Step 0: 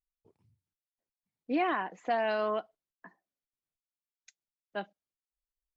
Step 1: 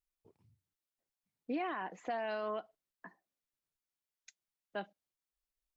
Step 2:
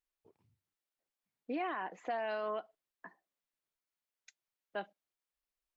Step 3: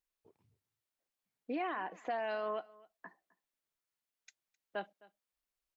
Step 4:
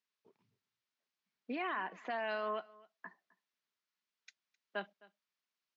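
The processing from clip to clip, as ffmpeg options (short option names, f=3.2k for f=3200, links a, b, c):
-af "alimiter=level_in=5dB:limit=-24dB:level=0:latency=1:release=105,volume=-5dB"
-af "bass=f=250:g=-7,treble=f=4k:g=-5,volume=1dB"
-af "aecho=1:1:260:0.0708"
-af "highpass=f=150:w=0.5412,highpass=f=150:w=1.3066,equalizer=f=150:t=q:w=4:g=-4,equalizer=f=310:t=q:w=4:g=-8,equalizer=f=510:t=q:w=4:g=-8,equalizer=f=760:t=q:w=4:g=-7,lowpass=f=5.7k:w=0.5412,lowpass=f=5.7k:w=1.3066,volume=3dB"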